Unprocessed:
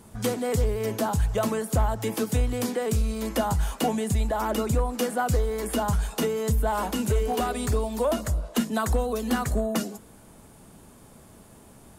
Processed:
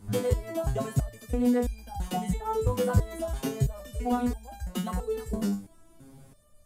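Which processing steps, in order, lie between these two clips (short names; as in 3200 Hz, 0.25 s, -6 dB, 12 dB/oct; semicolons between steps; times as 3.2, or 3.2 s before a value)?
low shelf 250 Hz +11 dB; tempo 1.8×; stepped resonator 3 Hz 100–800 Hz; gain +5.5 dB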